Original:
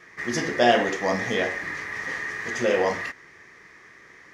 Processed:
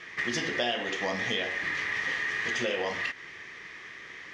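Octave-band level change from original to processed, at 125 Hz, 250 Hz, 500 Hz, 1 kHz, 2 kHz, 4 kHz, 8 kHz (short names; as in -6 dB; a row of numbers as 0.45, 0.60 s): -7.0, -8.5, -10.0, -10.0, -2.0, 0.0, -4.5 dB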